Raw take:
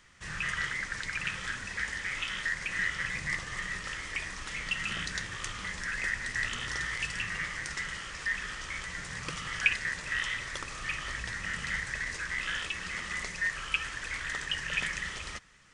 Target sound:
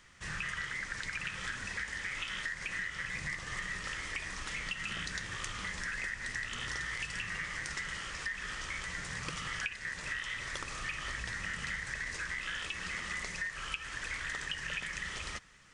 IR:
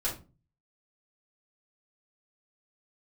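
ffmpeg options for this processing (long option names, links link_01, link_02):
-af "acompressor=threshold=-34dB:ratio=12"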